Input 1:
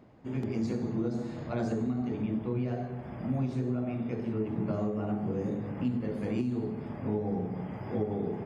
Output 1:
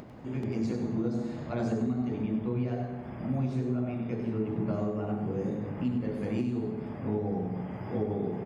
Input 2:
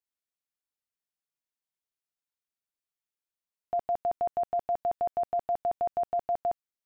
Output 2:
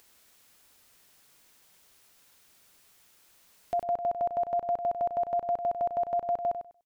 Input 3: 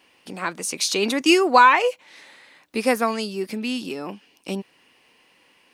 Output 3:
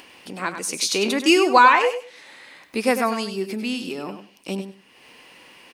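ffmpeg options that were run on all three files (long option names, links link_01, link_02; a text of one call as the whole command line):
ffmpeg -i in.wav -filter_complex "[0:a]acompressor=mode=upward:threshold=-38dB:ratio=2.5,asplit=2[link_01][link_02];[link_02]aecho=0:1:98|196|294:0.355|0.0639|0.0115[link_03];[link_01][link_03]amix=inputs=2:normalize=0" out.wav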